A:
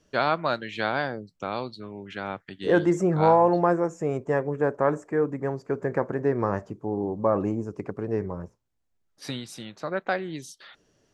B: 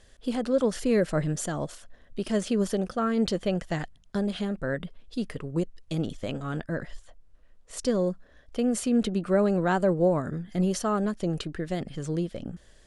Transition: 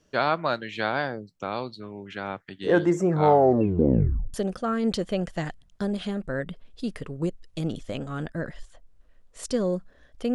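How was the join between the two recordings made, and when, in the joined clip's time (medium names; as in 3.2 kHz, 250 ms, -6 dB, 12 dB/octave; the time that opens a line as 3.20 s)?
A
3.19 s: tape stop 1.15 s
4.34 s: go over to B from 2.68 s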